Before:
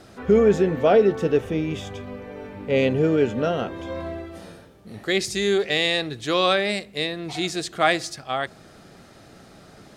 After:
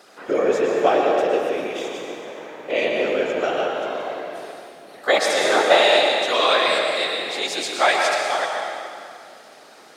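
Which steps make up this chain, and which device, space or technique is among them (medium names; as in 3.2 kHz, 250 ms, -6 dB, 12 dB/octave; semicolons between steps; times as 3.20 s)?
5.06–5.83 s: high-order bell 860 Hz +16 dB; whispering ghost (whisper effect; high-pass 540 Hz 12 dB/octave; reverberation RT60 2.4 s, pre-delay 99 ms, DRR 0.5 dB); trim +2 dB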